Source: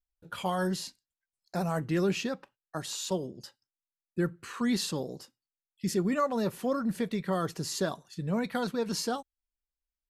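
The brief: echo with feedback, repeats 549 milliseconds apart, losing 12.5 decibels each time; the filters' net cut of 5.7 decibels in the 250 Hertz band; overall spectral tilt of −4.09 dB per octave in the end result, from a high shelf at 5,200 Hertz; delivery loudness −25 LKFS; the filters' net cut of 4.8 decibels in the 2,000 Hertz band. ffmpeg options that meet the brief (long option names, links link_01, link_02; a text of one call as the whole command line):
ffmpeg -i in.wav -af "equalizer=frequency=250:width_type=o:gain=-8,equalizer=frequency=2000:width_type=o:gain=-8,highshelf=frequency=5200:gain=8.5,aecho=1:1:549|1098|1647:0.237|0.0569|0.0137,volume=9dB" out.wav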